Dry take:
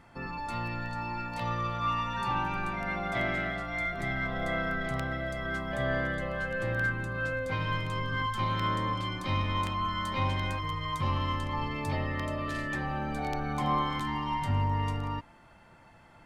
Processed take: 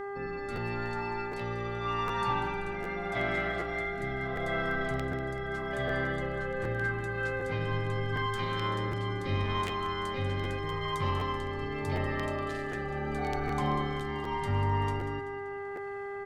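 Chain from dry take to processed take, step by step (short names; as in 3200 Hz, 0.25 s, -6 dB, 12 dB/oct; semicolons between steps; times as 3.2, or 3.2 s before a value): rotary speaker horn 0.8 Hz; buzz 400 Hz, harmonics 5, -38 dBFS -6 dB/oct; on a send: feedback echo 0.192 s, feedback 52%, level -11.5 dB; on the sum: crackling interface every 0.76 s, samples 512, repeat, from 0.55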